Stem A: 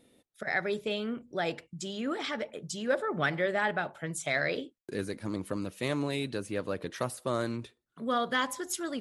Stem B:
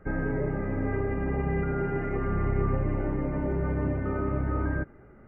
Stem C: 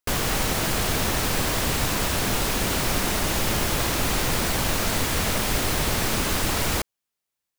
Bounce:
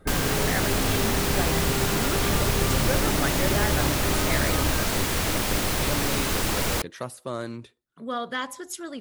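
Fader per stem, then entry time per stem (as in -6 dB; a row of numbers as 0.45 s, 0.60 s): -1.0 dB, 0.0 dB, -1.5 dB; 0.00 s, 0.00 s, 0.00 s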